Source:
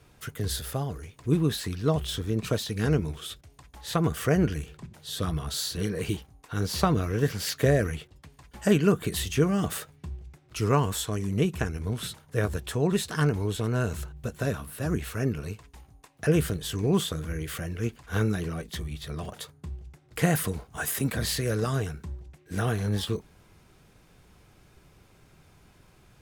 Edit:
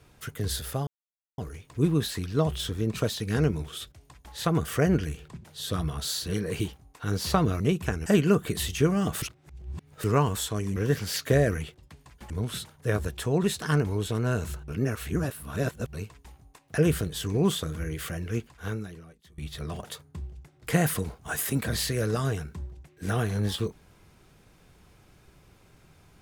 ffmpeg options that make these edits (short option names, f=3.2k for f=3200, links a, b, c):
-filter_complex "[0:a]asplit=11[a][b][c][d][e][f][g][h][i][j][k];[a]atrim=end=0.87,asetpts=PTS-STARTPTS,afade=t=out:st=0.866:d=0.004:c=hsin,apad=pad_dur=0.51[l];[b]atrim=start=0.87:end=7.092,asetpts=PTS-STARTPTS,afade=t=in:d=0.004:c=hsin[m];[c]atrim=start=11.328:end=11.792[n];[d]atrim=start=8.628:end=9.792[o];[e]atrim=start=9.788:end=10.612,asetpts=PTS-STARTPTS,areverse[p];[f]atrim=start=10.608:end=11.332[q];[g]atrim=start=7.088:end=8.632[r];[h]atrim=start=11.788:end=14.172[s];[i]atrim=start=14.168:end=15.422,asetpts=PTS-STARTPTS,areverse[t];[j]atrim=start=15.418:end=18.87,asetpts=PTS-STARTPTS,afade=t=out:st=2.402:d=1.05:c=qua:silence=0.0749894[u];[k]atrim=start=18.87,asetpts=PTS-STARTPTS,afade=t=in:d=0.004:c=hsin:silence=0.0749894[v];[l][m]concat=n=2:v=0:a=1[w];[w][n]acrossfade=d=0.004:c1=hsin:c2=hsin[x];[x][o]acrossfade=d=0.004:c1=hsin:c2=hsin[y];[y][p]acrossfade=d=0.004:c1=hsin:c2=hsin[z];[z][q]acrossfade=d=0.004:c1=hsin:c2=hsin[aa];[aa][r]acrossfade=d=0.004:c1=hsin:c2=hsin[ab];[ab][s]acrossfade=d=0.004:c1=hsin:c2=hsin[ac];[ac][t]acrossfade=d=0.004:c1=hsin:c2=hsin[ad];[u][v]concat=n=2:v=0:a=1[ae];[ad][ae]acrossfade=d=0.004:c1=hsin:c2=hsin"